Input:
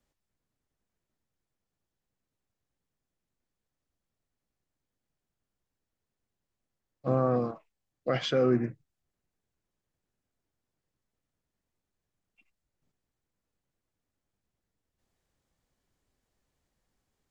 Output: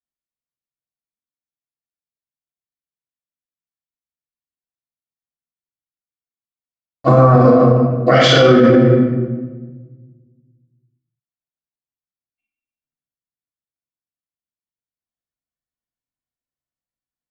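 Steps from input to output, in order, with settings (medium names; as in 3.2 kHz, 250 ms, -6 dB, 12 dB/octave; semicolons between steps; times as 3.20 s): band-stop 2.5 kHz, Q 17; gate -58 dBFS, range -44 dB; bass shelf 340 Hz -8.5 dB; comb of notches 410 Hz; simulated room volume 1000 m³, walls mixed, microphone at 3.3 m; loudness maximiser +23 dB; trim -1 dB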